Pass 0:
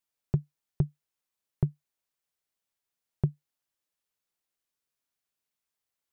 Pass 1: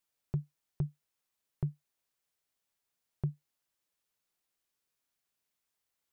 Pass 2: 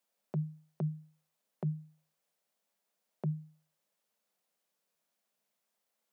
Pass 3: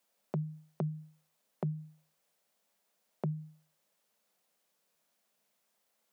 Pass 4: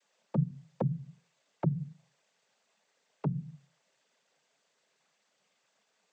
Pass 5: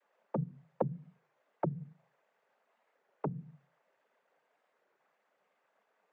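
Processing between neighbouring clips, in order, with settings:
limiter -25.5 dBFS, peak gain reduction 11 dB; gain +2 dB
rippled Chebyshev high-pass 150 Hz, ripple 9 dB; gain +9.5 dB
compressor, threshold -37 dBFS, peak gain reduction 7.5 dB; gain +5.5 dB
noise vocoder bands 16; gain +5 dB
three-band isolator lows -13 dB, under 290 Hz, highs -23 dB, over 2000 Hz; record warp 33 1/3 rpm, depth 160 cents; gain +3.5 dB

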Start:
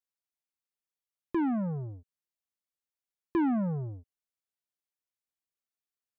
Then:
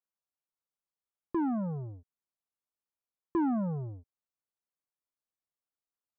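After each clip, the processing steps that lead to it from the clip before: resonant high shelf 1600 Hz -8.5 dB, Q 1.5; gain -2 dB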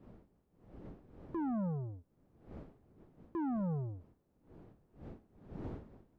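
wind noise 300 Hz -52 dBFS; limiter -31 dBFS, peak gain reduction 7.5 dB; gain -1.5 dB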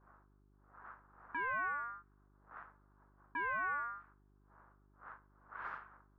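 ring modulator 1300 Hz; low-pass opened by the level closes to 520 Hz, open at -38.5 dBFS; buzz 50 Hz, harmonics 8, -70 dBFS -5 dB/oct; gain +1 dB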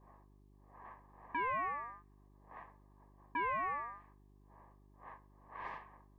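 Butterworth band-stop 1400 Hz, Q 2.2; gain +5 dB

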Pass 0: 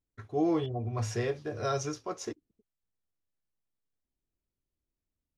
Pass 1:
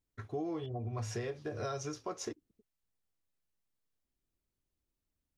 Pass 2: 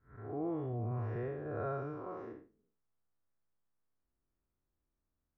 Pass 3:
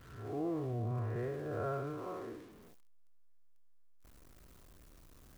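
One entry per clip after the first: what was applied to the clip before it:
compressor 6:1, threshold -36 dBFS, peak gain reduction 12.5 dB; gain +1 dB
time blur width 0.179 s; ladder low-pass 1800 Hz, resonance 25%; gain +8.5 dB
zero-crossing step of -51.5 dBFS; notch 850 Hz, Q 12

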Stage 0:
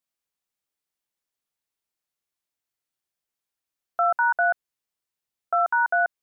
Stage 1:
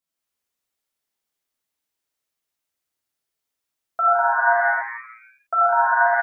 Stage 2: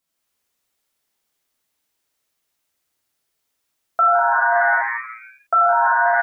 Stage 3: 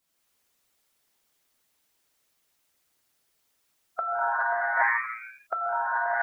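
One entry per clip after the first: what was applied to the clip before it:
frequency-shifting echo 81 ms, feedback 63%, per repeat +120 Hz, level -10 dB; non-linear reverb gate 0.31 s flat, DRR -5.5 dB; gain -2.5 dB
limiter -17 dBFS, peak gain reduction 10 dB; gain +8 dB
harmonic-percussive split harmonic -6 dB; negative-ratio compressor -25 dBFS, ratio -0.5

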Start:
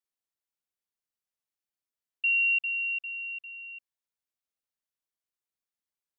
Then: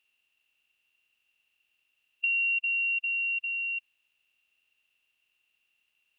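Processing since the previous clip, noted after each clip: per-bin compression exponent 0.6; compressor 3:1, threshold -31 dBFS, peak gain reduction 6.5 dB; gain +3.5 dB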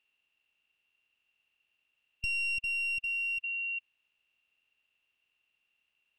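one-sided fold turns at -27.5 dBFS; LPF 2700 Hz 6 dB/oct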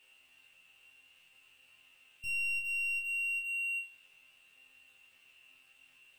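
power-law curve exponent 0.5; resonator bank F2 fifth, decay 0.37 s

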